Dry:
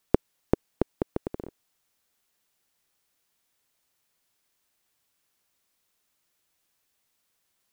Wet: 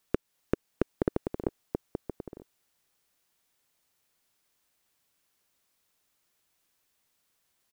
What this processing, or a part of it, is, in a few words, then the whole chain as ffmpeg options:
limiter into clipper: -filter_complex "[0:a]asplit=2[s0][s1];[s1]adelay=932.9,volume=0.447,highshelf=f=4000:g=-21[s2];[s0][s2]amix=inputs=2:normalize=0,alimiter=limit=0.422:level=0:latency=1:release=249,asoftclip=type=hard:threshold=0.282"

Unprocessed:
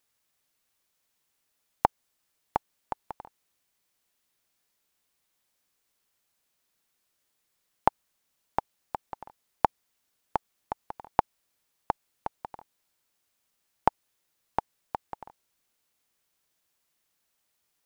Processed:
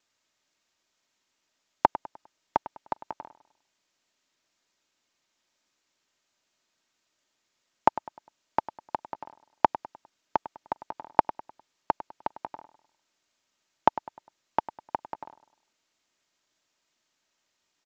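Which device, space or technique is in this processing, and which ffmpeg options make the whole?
Bluetooth headset: -filter_complex "[0:a]highpass=110,aecho=1:1:3.2:0.31,asplit=2[s0][s1];[s1]adelay=101,lowpass=f=4200:p=1,volume=0.178,asplit=2[s2][s3];[s3]adelay=101,lowpass=f=4200:p=1,volume=0.4,asplit=2[s4][s5];[s5]adelay=101,lowpass=f=4200:p=1,volume=0.4,asplit=2[s6][s7];[s7]adelay=101,lowpass=f=4200:p=1,volume=0.4[s8];[s0][s2][s4][s6][s8]amix=inputs=5:normalize=0,aresample=16000,aresample=44100,volume=1.33" -ar 32000 -c:a sbc -b:a 64k

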